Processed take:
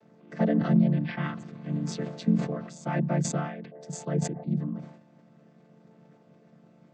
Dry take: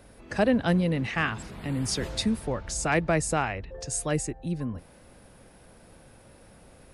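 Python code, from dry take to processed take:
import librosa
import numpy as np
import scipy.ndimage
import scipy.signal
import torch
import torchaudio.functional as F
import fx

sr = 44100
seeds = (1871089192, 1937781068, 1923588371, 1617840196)

y = fx.chord_vocoder(x, sr, chord='minor triad', root=50)
y = fx.brickwall_lowpass(y, sr, high_hz=5700.0, at=(0.75, 1.23))
y = fx.high_shelf(y, sr, hz=4300.0, db=-9.5, at=(4.08, 4.5))
y = fx.sustainer(y, sr, db_per_s=86.0)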